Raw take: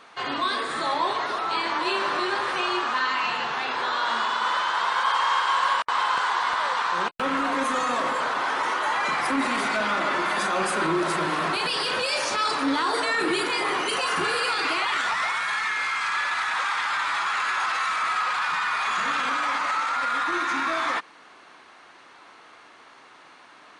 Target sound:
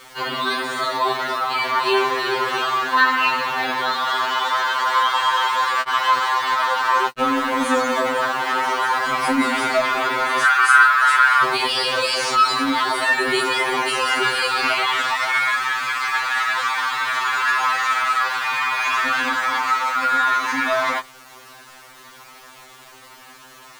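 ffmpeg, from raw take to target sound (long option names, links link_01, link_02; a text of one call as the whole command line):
ffmpeg -i in.wav -filter_complex "[0:a]asettb=1/sr,asplit=3[link_01][link_02][link_03];[link_01]atrim=end=10.434[link_04];[link_02]atrim=start=10.43:end=11.43,asetpts=PTS-STARTPTS,afade=type=in:duration=0.004:curve=qsin,afade=type=out:start_time=0.996:duration=0.004:curve=qsin,highpass=frequency=1400:width_type=q:width=4.6[link_05];[link_03]atrim=start=11.426[link_06];[link_04][link_05]acrossfade=duration=0.004:curve1=hsin:curve2=qsin[link_07];[link_07][link_06]acrossfade=duration=0.004:curve1=qsin:curve2=hsin,acrusher=bits=7:mix=0:aa=0.000001,afftfilt=real='re*2.45*eq(mod(b,6),0)':imag='im*2.45*eq(mod(b,6),0)':win_size=2048:overlap=0.75,volume=7dB" out.wav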